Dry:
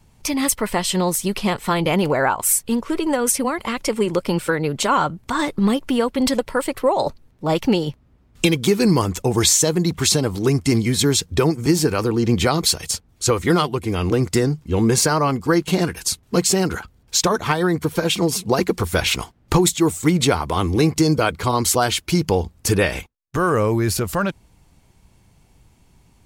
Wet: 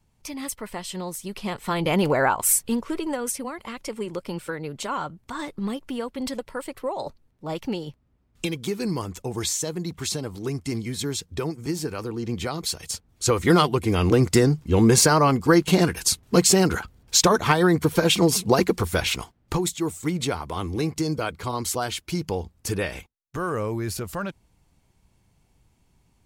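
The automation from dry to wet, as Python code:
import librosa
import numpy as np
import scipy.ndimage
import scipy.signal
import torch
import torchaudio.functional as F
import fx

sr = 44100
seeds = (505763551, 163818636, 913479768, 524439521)

y = fx.gain(x, sr, db=fx.line((1.23, -12.5), (2.01, -2.0), (2.54, -2.0), (3.44, -11.0), (12.58, -11.0), (13.6, 0.5), (18.45, 0.5), (19.56, -9.0)))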